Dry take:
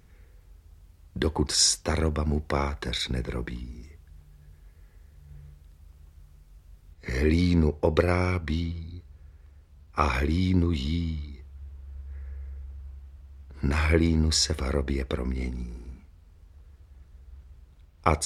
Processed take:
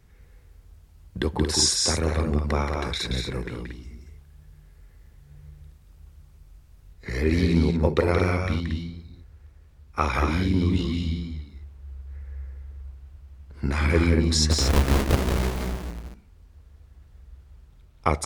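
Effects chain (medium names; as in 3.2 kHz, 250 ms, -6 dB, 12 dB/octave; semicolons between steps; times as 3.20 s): 14.51–15.91 s: square wave that keeps the level; wow and flutter 39 cents; loudspeakers at several distances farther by 61 m -5 dB, 79 m -7 dB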